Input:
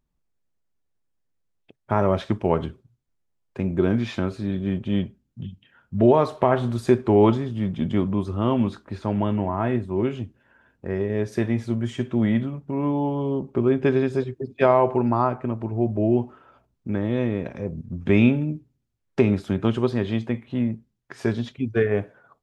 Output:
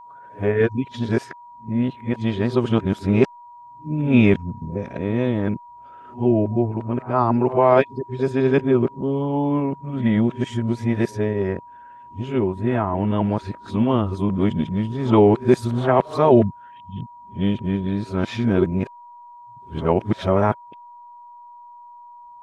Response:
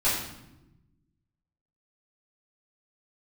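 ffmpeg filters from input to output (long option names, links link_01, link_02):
-af "areverse,aeval=exprs='val(0)+0.00708*sin(2*PI*960*n/s)':channel_layout=same,volume=2.5dB"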